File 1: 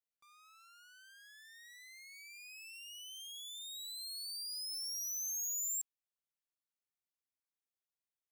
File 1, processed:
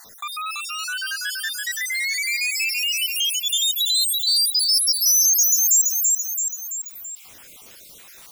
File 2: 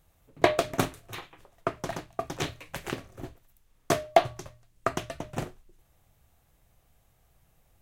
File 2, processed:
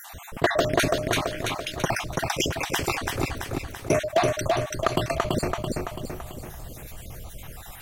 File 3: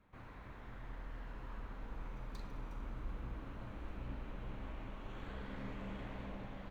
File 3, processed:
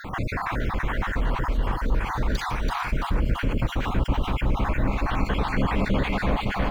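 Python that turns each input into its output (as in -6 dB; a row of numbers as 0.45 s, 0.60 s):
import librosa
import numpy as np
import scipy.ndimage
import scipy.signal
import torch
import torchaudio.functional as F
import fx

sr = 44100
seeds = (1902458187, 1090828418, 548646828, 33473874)

p1 = fx.spec_dropout(x, sr, seeds[0], share_pct=56)
p2 = 10.0 ** (-24.5 / 20.0) * (np.abs((p1 / 10.0 ** (-24.5 / 20.0) + 3.0) % 4.0 - 2.0) - 1.0)
p3 = p1 + (p2 * librosa.db_to_amplitude(-8.5))
p4 = fx.echo_feedback(p3, sr, ms=334, feedback_pct=31, wet_db=-5.5)
p5 = 10.0 ** (-15.0 / 20.0) * np.tanh(p4 / 10.0 ** (-15.0 / 20.0))
p6 = fx.env_flatten(p5, sr, amount_pct=50)
y = librosa.util.normalize(p6) * 10.0 ** (-9 / 20.0)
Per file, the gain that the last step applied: +19.5 dB, +3.5 dB, +17.5 dB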